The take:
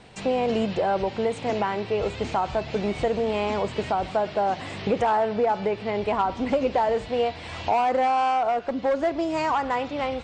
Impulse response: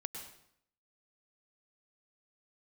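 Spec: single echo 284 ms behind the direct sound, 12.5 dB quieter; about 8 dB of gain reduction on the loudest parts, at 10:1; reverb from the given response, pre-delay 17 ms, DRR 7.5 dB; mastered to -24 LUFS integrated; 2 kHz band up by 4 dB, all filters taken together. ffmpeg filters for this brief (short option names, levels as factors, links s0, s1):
-filter_complex "[0:a]equalizer=f=2000:t=o:g=5,acompressor=threshold=0.0501:ratio=10,aecho=1:1:284:0.237,asplit=2[s0][s1];[1:a]atrim=start_sample=2205,adelay=17[s2];[s1][s2]afir=irnorm=-1:irlink=0,volume=0.501[s3];[s0][s3]amix=inputs=2:normalize=0,volume=2"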